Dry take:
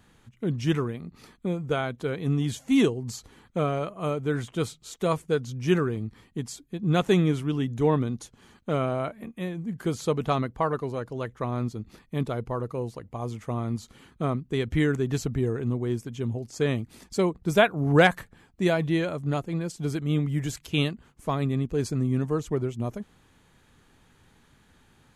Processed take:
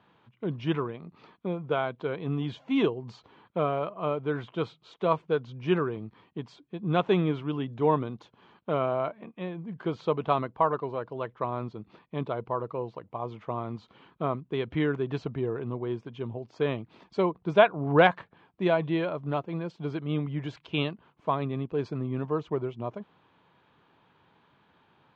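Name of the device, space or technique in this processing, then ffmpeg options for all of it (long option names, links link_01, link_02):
kitchen radio: -af "highpass=160,equalizer=frequency=240:width_type=q:width=4:gain=-6,equalizer=frequency=640:width_type=q:width=4:gain=3,equalizer=frequency=990:width_type=q:width=4:gain=7,equalizer=frequency=1900:width_type=q:width=4:gain=-5,lowpass=frequency=3500:width=0.5412,lowpass=frequency=3500:width=1.3066,volume=-1.5dB"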